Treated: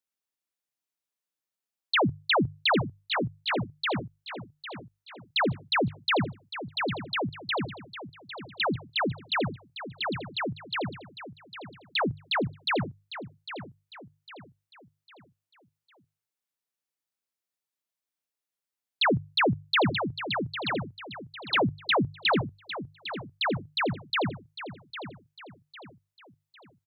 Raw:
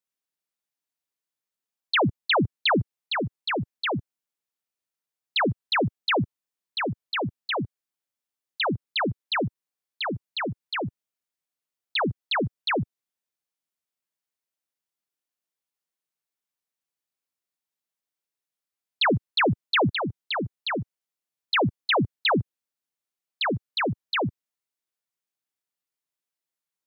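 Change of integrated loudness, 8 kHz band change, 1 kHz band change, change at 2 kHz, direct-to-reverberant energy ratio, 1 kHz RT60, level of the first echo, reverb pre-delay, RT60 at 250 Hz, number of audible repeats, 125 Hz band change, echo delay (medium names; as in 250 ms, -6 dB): -2.5 dB, no reading, -1.5 dB, -1.5 dB, no reverb, no reverb, -12.0 dB, no reverb, no reverb, 3, -2.5 dB, 803 ms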